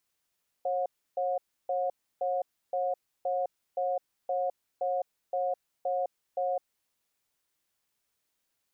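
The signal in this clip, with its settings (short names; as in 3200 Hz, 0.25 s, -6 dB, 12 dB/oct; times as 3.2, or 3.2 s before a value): cadence 543 Hz, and 723 Hz, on 0.21 s, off 0.31 s, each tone -29.5 dBFS 6.06 s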